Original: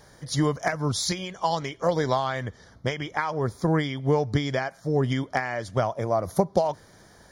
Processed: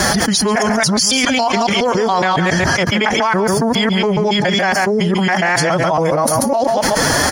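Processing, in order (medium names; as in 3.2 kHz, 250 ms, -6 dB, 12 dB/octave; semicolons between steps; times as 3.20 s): time reversed locally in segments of 139 ms; bass shelf 340 Hz -7.5 dB; formant-preserving pitch shift +6 st; delay 139 ms -14 dB; level flattener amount 100%; trim +5.5 dB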